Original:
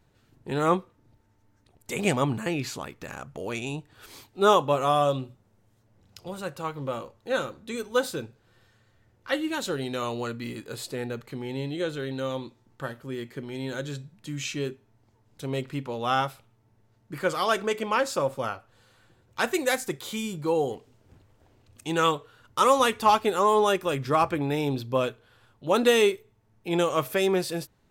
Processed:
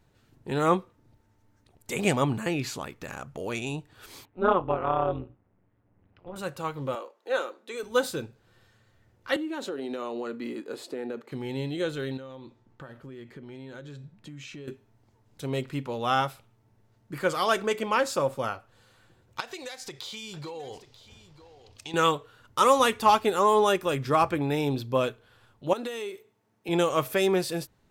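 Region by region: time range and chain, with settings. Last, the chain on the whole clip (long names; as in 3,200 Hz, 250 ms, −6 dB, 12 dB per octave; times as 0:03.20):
0:04.25–0:06.36: low-pass filter 2,400 Hz 24 dB per octave + amplitude modulation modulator 180 Hz, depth 75%
0:06.95–0:07.83: high-pass filter 350 Hz 24 dB per octave + high-shelf EQ 4,000 Hz −6.5 dB
0:09.36–0:11.32: high-pass filter 270 Hz 24 dB per octave + spectral tilt −3 dB per octave + downward compressor 10 to 1, threshold −29 dBFS
0:12.17–0:14.68: low-pass filter 2,700 Hz 6 dB per octave + downward compressor 8 to 1, threshold −39 dBFS
0:19.40–0:21.94: drawn EQ curve 110 Hz 0 dB, 230 Hz −7 dB, 430 Hz −1 dB, 900 Hz +3 dB, 1,500 Hz 0 dB, 4,900 Hz +11 dB, 7,800 Hz −1 dB, 12,000 Hz −6 dB + downward compressor 10 to 1, threshold −35 dBFS + single-tap delay 938 ms −15.5 dB
0:25.73–0:26.69: high-pass filter 210 Hz + downward compressor 20 to 1, threshold −30 dBFS
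whole clip: no processing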